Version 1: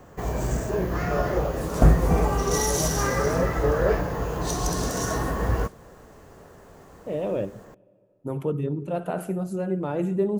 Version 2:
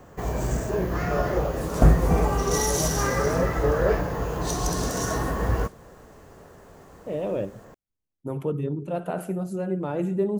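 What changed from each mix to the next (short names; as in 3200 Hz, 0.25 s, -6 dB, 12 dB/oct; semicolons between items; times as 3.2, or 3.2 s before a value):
reverb: off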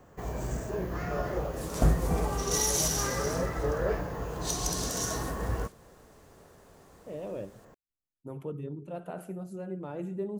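speech -10.0 dB; first sound -7.5 dB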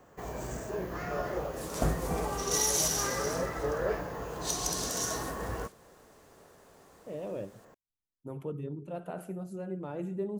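first sound: add low shelf 180 Hz -9 dB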